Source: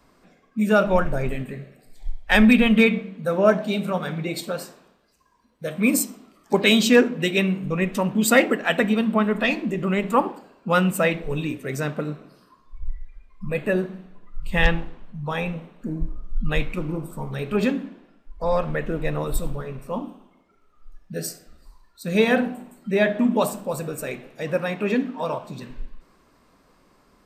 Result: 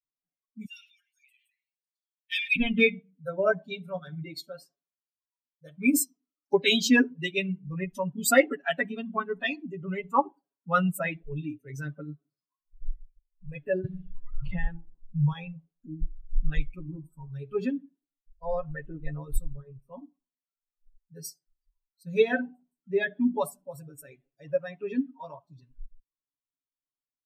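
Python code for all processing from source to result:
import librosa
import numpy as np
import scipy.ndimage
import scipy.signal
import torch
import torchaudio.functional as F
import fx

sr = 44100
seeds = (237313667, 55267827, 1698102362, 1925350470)

y = fx.chain(x, sr, fx.steep_highpass(hz=2200.0, slope=36),
    fx.sustainer(db_per_s=53.0), at=(0.65, 2.56))
y = fx.chain(y, sr, fx.lowpass(hz=1500.0, slope=6),
    fx.band_squash(depth_pct=100), at=(13.84, 15.33))
y = fx.bin_expand(y, sr, power=2.0)
y = y + 0.9 * np.pad(y, (int(7.2 * sr / 1000.0), 0))[:len(y)]
y = y * 10.0 ** (-3.0 / 20.0)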